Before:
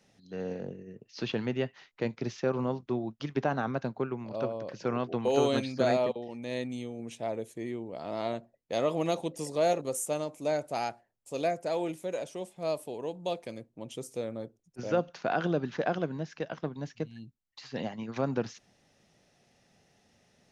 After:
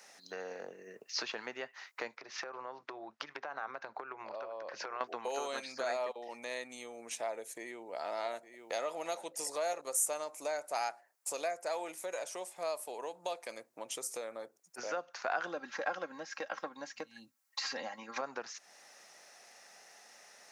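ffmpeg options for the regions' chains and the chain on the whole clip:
ffmpeg -i in.wav -filter_complex "[0:a]asettb=1/sr,asplit=3[link_01][link_02][link_03];[link_01]atrim=end=2.174[link_04];[link_02]atrim=start=2.17:end=5.01,asetpts=PTS-STARTPTS,afade=type=in:duration=0.004:curve=qsin,afade=type=out:start_time=2.836:duration=0.004:curve=qsin,lowpass=4100,bandreject=frequency=240:width=5.1,acompressor=threshold=-43dB:ratio=6:attack=3.2:release=140:knee=1:detection=peak[link_05];[link_03]atrim=start=5.006[link_06];[link_04][link_05]acrossfade=duration=0.004:curve1=hsin:curve2=qsin[link_07];[link_07][link_06]acrossfade=duration=0.004:curve1=qsin:curve2=hsin,asettb=1/sr,asplit=3[link_08][link_09][link_10];[link_08]atrim=end=7.324[link_11];[link_09]atrim=start=7.32:end=9.51,asetpts=PTS-STARTPTS,afade=type=in:duration=0.004:curve=qsin,afade=type=out:start_time=2.186:duration=0.004:curve=qsin,bandreject=frequency=1100:width=7.1,aecho=1:1:860:0.178,atrim=end_sample=96579[link_12];[link_10]atrim=start=9.506[link_13];[link_11][link_12]acrossfade=duration=0.004:curve1=hsin:curve2=qsin[link_14];[link_14][link_13]acrossfade=duration=0.004:curve1=qsin:curve2=hsin,asettb=1/sr,asplit=3[link_15][link_16][link_17];[link_15]atrim=end=15.474[link_18];[link_16]atrim=start=15.47:end=18.21,asetpts=PTS-STARTPTS,afade=type=in:duration=0.004:curve=qsin,afade=type=out:start_time=2.736:duration=0.004:curve=qsin,equalizer=frequency=79:width_type=o:width=2:gain=10,aecho=1:1:3.7:0.7,atrim=end_sample=120834[link_19];[link_17]atrim=start=18.206[link_20];[link_18][link_19]acrossfade=duration=0.004:curve1=hsin:curve2=qsin[link_21];[link_21][link_20]acrossfade=duration=0.004:curve1=qsin:curve2=hsin,acompressor=threshold=-45dB:ratio=3,highpass=970,equalizer=frequency=3200:width=1.6:gain=-9.5,volume=15.5dB" out.wav

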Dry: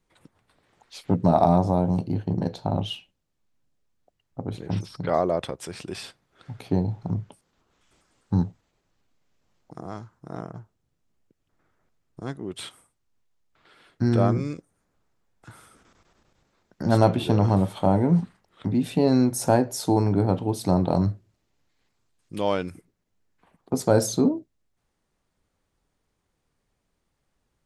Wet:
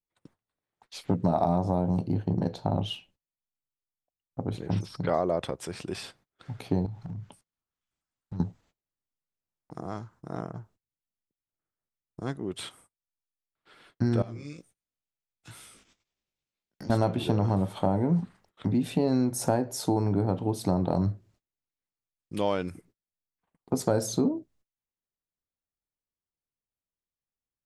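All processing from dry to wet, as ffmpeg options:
ffmpeg -i in.wav -filter_complex "[0:a]asettb=1/sr,asplit=3[link_01][link_02][link_03];[link_01]atrim=end=6.864[link_04];[link_02]atrim=start=6.86:end=8.4,asetpts=PTS-STARTPTS,afade=type=in:duration=0.004:curve=qsin,afade=type=out:start_time=1.536:duration=0.004:curve=qsin,equalizer=frequency=430:width_type=o:width=1.5:gain=-6.5,acompressor=threshold=-33dB:ratio=6:attack=3.2:release=140:knee=1:detection=peak,asoftclip=type=hard:threshold=-31dB[link_05];[link_03]atrim=start=8.396[link_06];[link_04][link_05]acrossfade=duration=0.004:curve1=hsin:curve2=qsin[link_07];[link_07][link_06]acrossfade=duration=0.004:curve1=qsin:curve2=hsin,asettb=1/sr,asplit=3[link_08][link_09][link_10];[link_08]atrim=end=14.224[link_11];[link_09]atrim=start=14.22:end=16.9,asetpts=PTS-STARTPTS,afade=type=in:duration=0.004:curve=qsin,afade=type=out:start_time=2.676:duration=0.004:curve=qsin,highshelf=frequency=1900:width_type=q:width=1.5:gain=8.5,acompressor=threshold=-35dB:ratio=4:attack=3.2:release=140:knee=1:detection=peak,flanger=delay=15:depth=5.6:speed=2.1[link_12];[link_10]atrim=start=16.896[link_13];[link_11][link_12]acrossfade=duration=0.004:curve1=hsin:curve2=qsin[link_14];[link_14][link_13]acrossfade=duration=0.004:curve1=qsin:curve2=hsin,agate=range=-25dB:threshold=-57dB:ratio=16:detection=peak,acompressor=threshold=-22dB:ratio=3,adynamicequalizer=threshold=0.00501:dfrequency=1600:dqfactor=0.7:tfrequency=1600:tqfactor=0.7:attack=5:release=100:ratio=0.375:range=1.5:mode=cutabove:tftype=highshelf" out.wav

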